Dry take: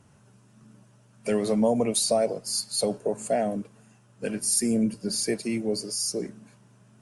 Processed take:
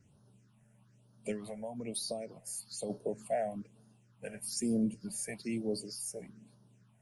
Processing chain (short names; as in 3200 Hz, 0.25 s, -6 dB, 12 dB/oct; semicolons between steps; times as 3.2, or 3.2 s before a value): 1.31–2.9 compressor, threshold -26 dBFS, peak gain reduction 8.5 dB; phaser stages 6, 1.1 Hz, lowest notch 290–2300 Hz; gain -7.5 dB